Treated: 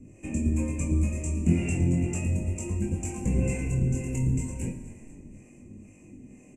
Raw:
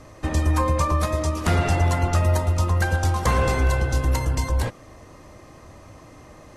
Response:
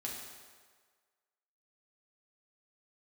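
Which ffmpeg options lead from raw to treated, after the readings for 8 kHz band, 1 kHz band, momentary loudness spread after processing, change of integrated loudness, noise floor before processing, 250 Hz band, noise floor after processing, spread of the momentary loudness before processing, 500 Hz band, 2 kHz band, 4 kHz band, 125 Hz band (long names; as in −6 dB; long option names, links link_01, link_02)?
−3.5 dB, −24.0 dB, 10 LU, −6.0 dB, −47 dBFS, +1.0 dB, −52 dBFS, 4 LU, −10.5 dB, −13.5 dB, below −15 dB, −5.5 dB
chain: -filter_complex "[0:a]firequalizer=gain_entry='entry(100,0);entry(200,12);entry(570,-9);entry(1300,-25);entry(2500,5);entry(3900,-29);entry(7500,9);entry(11000,-11)':delay=0.05:min_phase=1,asplit=6[link_01][link_02][link_03][link_04][link_05][link_06];[link_02]adelay=242,afreqshift=-32,volume=-18dB[link_07];[link_03]adelay=484,afreqshift=-64,volume=-22.4dB[link_08];[link_04]adelay=726,afreqshift=-96,volume=-26.9dB[link_09];[link_05]adelay=968,afreqshift=-128,volume=-31.3dB[link_10];[link_06]adelay=1210,afreqshift=-160,volume=-35.7dB[link_11];[link_01][link_07][link_08][link_09][link_10][link_11]amix=inputs=6:normalize=0,acrossover=split=450[link_12][link_13];[link_12]aeval=exprs='val(0)*(1-0.7/2+0.7/2*cos(2*PI*2.1*n/s))':channel_layout=same[link_14];[link_13]aeval=exprs='val(0)*(1-0.7/2-0.7/2*cos(2*PI*2.1*n/s))':channel_layout=same[link_15];[link_14][link_15]amix=inputs=2:normalize=0,bandreject=frequency=3300:width=5.6,asplit=2[link_16][link_17];[link_17]adelay=29,volume=-10.5dB[link_18];[link_16][link_18]amix=inputs=2:normalize=0,flanger=delay=20:depth=3.7:speed=0.34,asplit=2[link_19][link_20];[1:a]atrim=start_sample=2205[link_21];[link_20][link_21]afir=irnorm=-1:irlink=0,volume=-2dB[link_22];[link_19][link_22]amix=inputs=2:normalize=0,volume=-4.5dB"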